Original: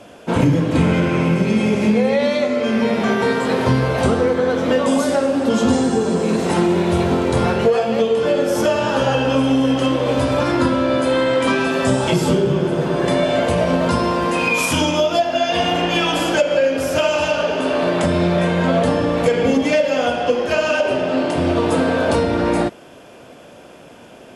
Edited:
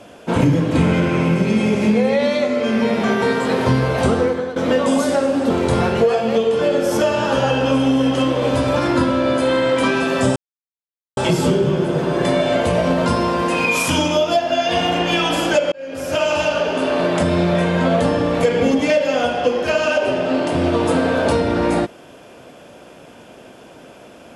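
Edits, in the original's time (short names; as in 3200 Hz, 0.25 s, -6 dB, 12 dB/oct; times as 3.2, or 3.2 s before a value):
4.22–4.56 fade out, to -13.5 dB
5.5–7.14 cut
12 insert silence 0.81 s
16.55–17.11 fade in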